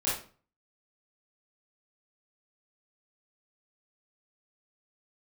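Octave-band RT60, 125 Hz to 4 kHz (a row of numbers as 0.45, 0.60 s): 0.55, 0.50, 0.40, 0.40, 0.35, 0.30 s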